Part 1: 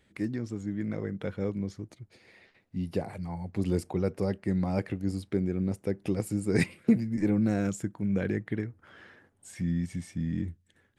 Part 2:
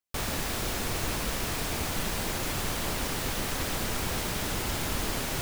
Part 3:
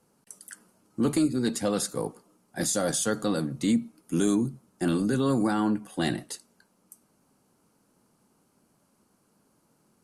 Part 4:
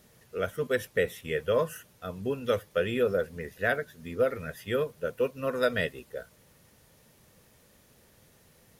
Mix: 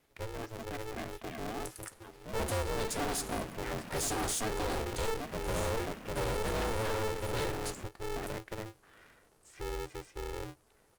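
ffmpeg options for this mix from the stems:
-filter_complex "[0:a]highpass=f=79:w=0.5412,highpass=f=79:w=1.3066,highshelf=f=9.5k:g=-10.5,volume=-7dB[a];[1:a]afwtdn=0.0178,alimiter=level_in=5.5dB:limit=-24dB:level=0:latency=1:release=319,volume=-5.5dB,adelay=2450,volume=-8.5dB[b];[2:a]adelay=1350,volume=-1dB[c];[3:a]volume=-15dB[d];[a][b][c][d]amix=inputs=4:normalize=0,asoftclip=type=tanh:threshold=-30dB,aeval=exprs='val(0)*sgn(sin(2*PI*220*n/s))':c=same"

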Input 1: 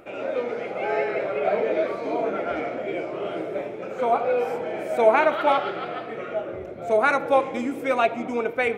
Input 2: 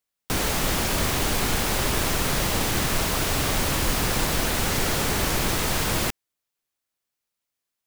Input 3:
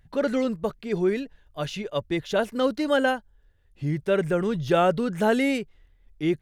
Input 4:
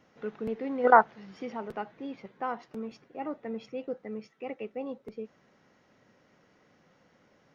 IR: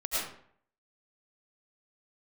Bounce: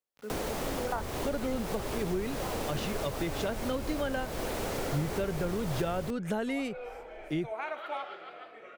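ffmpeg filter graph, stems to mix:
-filter_complex "[0:a]highpass=f=820:p=1,adelay=2450,volume=-12dB[a];[1:a]equalizer=f=500:w=0.66:g=11.5,volume=-12dB[b];[2:a]adelay=1100,volume=0dB[c];[3:a]acrusher=bits=7:mix=0:aa=0.000001,volume=-6.5dB[d];[a][b][c][d]amix=inputs=4:normalize=0,acrossover=split=120[e][f];[f]acompressor=threshold=-31dB:ratio=5[g];[e][g]amix=inputs=2:normalize=0"

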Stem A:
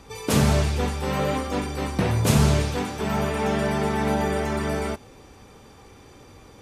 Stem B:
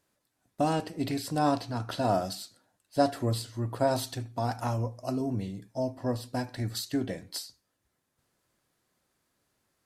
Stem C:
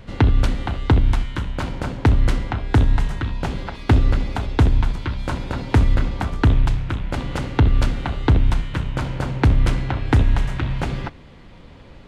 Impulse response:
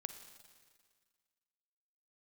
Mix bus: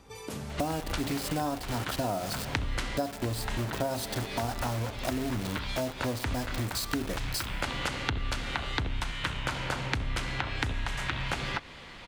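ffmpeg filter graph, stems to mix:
-filter_complex "[0:a]acompressor=threshold=-29dB:ratio=6,volume=-9.5dB,asplit=2[a][b];[b]volume=-9dB[c];[1:a]acrusher=bits=5:mix=0:aa=0.000001,volume=1.5dB,asplit=3[d][e][f];[e]volume=-3.5dB[g];[2:a]acrossover=split=370[h][i];[i]acompressor=threshold=-26dB:ratio=2[j];[h][j]amix=inputs=2:normalize=0,tiltshelf=f=630:g=-8.5,adelay=500,volume=-0.5dB[k];[f]apad=whole_len=554458[l];[k][l]sidechaincompress=threshold=-37dB:ratio=8:attack=16:release=230[m];[3:a]atrim=start_sample=2205[n];[c][g]amix=inputs=2:normalize=0[o];[o][n]afir=irnorm=-1:irlink=0[p];[a][d][m][p]amix=inputs=4:normalize=0,acompressor=threshold=-28dB:ratio=6"

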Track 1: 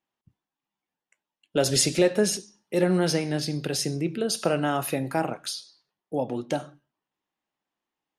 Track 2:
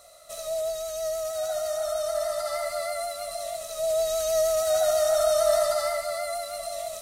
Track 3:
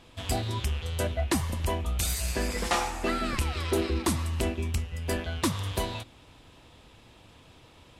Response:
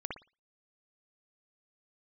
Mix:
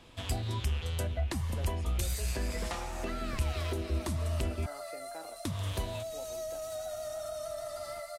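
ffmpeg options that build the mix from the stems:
-filter_complex "[0:a]acrossover=split=320 2400:gain=0.0891 1 0.158[a][b][c];[a][b][c]amix=inputs=3:normalize=0,volume=-18dB[d];[1:a]adelay=2050,volume=-12dB[e];[2:a]volume=-1.5dB,asplit=3[f][g][h];[f]atrim=end=4.66,asetpts=PTS-STARTPTS,afade=t=out:st=4.656:d=0.004:c=hsin[i];[g]atrim=start=4.66:end=5.45,asetpts=PTS-STARTPTS,volume=0[j];[h]atrim=start=5.45,asetpts=PTS-STARTPTS,afade=t=in:d=0.004:c=hsin[k];[i][j][k]concat=n=3:v=0:a=1[l];[d][e][l]amix=inputs=3:normalize=0,acrossover=split=150[m][n];[n]acompressor=threshold=-36dB:ratio=6[o];[m][o]amix=inputs=2:normalize=0"

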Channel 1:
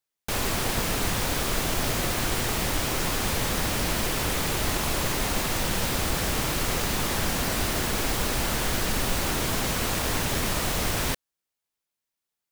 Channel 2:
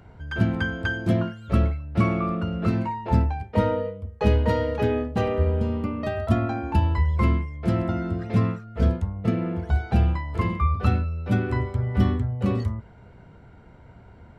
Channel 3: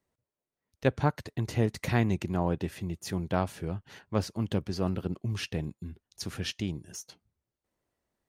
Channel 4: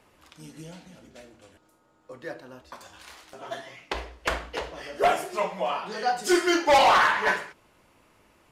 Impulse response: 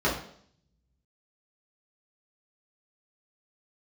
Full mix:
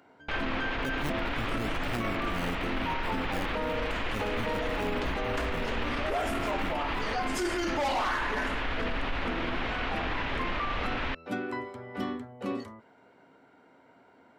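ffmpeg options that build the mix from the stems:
-filter_complex "[0:a]lowpass=f=2.9k:w=0.5412,lowpass=f=2.9k:w=1.3066,equalizer=f=190:t=o:w=2.8:g=-12.5,volume=0.5dB[a];[1:a]highpass=420,volume=-3.5dB[b];[2:a]acrusher=samples=19:mix=1:aa=0.000001:lfo=1:lforange=11.4:lforate=0.92,volume=-7dB[c];[3:a]equalizer=f=64:w=4.3:g=12.5,adelay=1100,volume=-2dB[d];[a][b][c][d]amix=inputs=4:normalize=0,equalizer=f=270:t=o:w=0.32:g=10.5,alimiter=limit=-22.5dB:level=0:latency=1:release=15"

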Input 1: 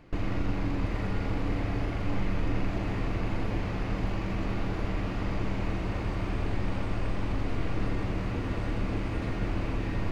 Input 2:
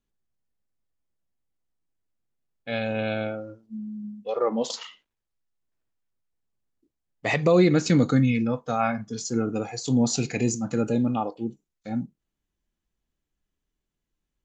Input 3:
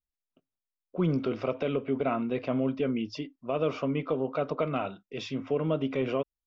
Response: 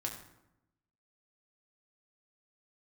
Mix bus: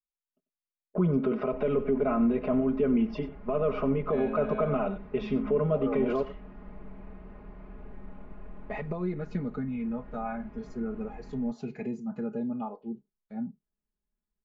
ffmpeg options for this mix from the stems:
-filter_complex "[0:a]adelay=1400,volume=-17.5dB[a];[1:a]adelay=1450,volume=-9.5dB[b];[2:a]agate=range=-24dB:threshold=-42dB:ratio=16:detection=peak,acontrast=63,alimiter=limit=-22.5dB:level=0:latency=1:release=199,volume=1.5dB,asplit=2[c][d];[d]volume=-15.5dB[e];[a][b]amix=inputs=2:normalize=0,acompressor=threshold=-33dB:ratio=2.5,volume=0dB[f];[e]aecho=0:1:94:1[g];[c][f][g]amix=inputs=3:normalize=0,lowpass=1.5k,aecho=1:1:4.8:0.95"

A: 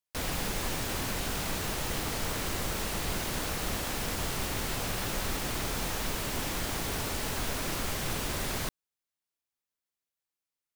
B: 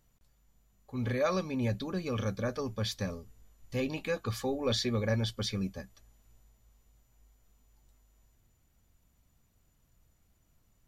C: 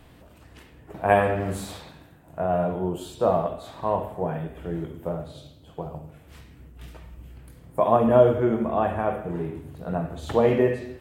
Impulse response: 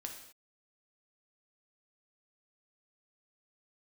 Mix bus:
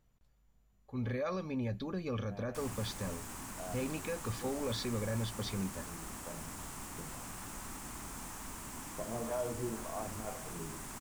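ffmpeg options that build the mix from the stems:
-filter_complex "[0:a]equalizer=f=250:t=o:w=1:g=7,equalizer=f=500:t=o:w=1:g=-7,equalizer=f=1k:t=o:w=1:g=8,equalizer=f=4k:t=o:w=1:g=-7,equalizer=f=8k:t=o:w=1:g=10,adelay=2400,volume=-15dB[a];[1:a]highshelf=f=4.2k:g=-9.5,volume=-2.5dB,asplit=3[b][c][d];[c]volume=-21.5dB[e];[2:a]acrossover=split=470[f][g];[f]aeval=exprs='val(0)*(1-1/2+1/2*cos(2*PI*1.9*n/s))':c=same[h];[g]aeval=exprs='val(0)*(1-1/2-1/2*cos(2*PI*1.9*n/s))':c=same[i];[h][i]amix=inputs=2:normalize=0,adelay=1200,volume=-12.5dB[j];[d]apad=whole_len=538081[k];[j][k]sidechaincompress=threshold=-42dB:ratio=8:attack=7.9:release=871[l];[b][l]amix=inputs=2:normalize=0,alimiter=level_in=5dB:limit=-24dB:level=0:latency=1:release=54,volume=-5dB,volume=0dB[m];[3:a]atrim=start_sample=2205[n];[e][n]afir=irnorm=-1:irlink=0[o];[a][m][o]amix=inputs=3:normalize=0"

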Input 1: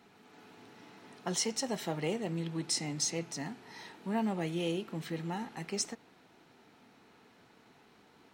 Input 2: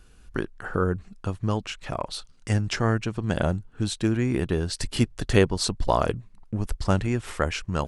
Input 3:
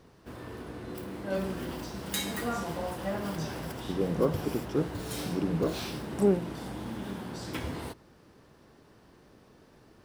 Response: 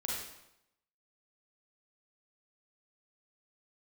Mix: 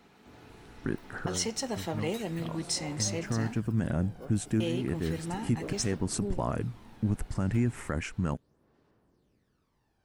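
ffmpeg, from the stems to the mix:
-filter_complex "[0:a]volume=1dB,asplit=3[a][b][c];[a]atrim=end=3.6,asetpts=PTS-STARTPTS,afade=t=out:st=3.596:d=0.004:c=hsin[d];[b]atrim=start=3.6:end=4.6,asetpts=PTS-STARTPTS,volume=0[e];[c]atrim=start=4.6,asetpts=PTS-STARTPTS,afade=t=in:d=0.004:c=hsin[f];[d][e][f]concat=n=3:v=0:a=1,asplit=2[g][h];[1:a]equalizer=f=125:t=o:w=1:g=8,equalizer=f=250:t=o:w=1:g=9,equalizer=f=2k:t=o:w=1:g=7,equalizer=f=4k:t=o:w=1:g=-12,equalizer=f=8k:t=o:w=1:g=7,adelay=500,volume=-8dB[i];[2:a]aphaser=in_gain=1:out_gain=1:delay=1.4:decay=0.59:speed=0.34:type=sinusoidal,volume=-17.5dB[j];[h]apad=whole_len=369200[k];[i][k]sidechaincompress=threshold=-41dB:ratio=8:attack=10:release=188[l];[g][l][j]amix=inputs=3:normalize=0,alimiter=limit=-18.5dB:level=0:latency=1:release=26"

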